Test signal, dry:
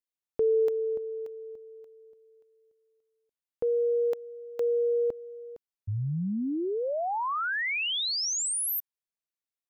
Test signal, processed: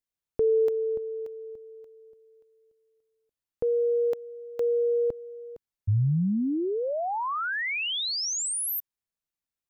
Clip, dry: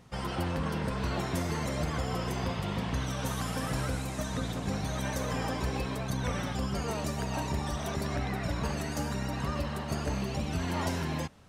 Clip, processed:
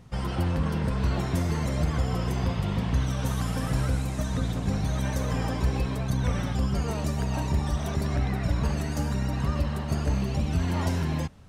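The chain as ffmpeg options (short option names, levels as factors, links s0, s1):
-af "lowshelf=f=180:g=10.5"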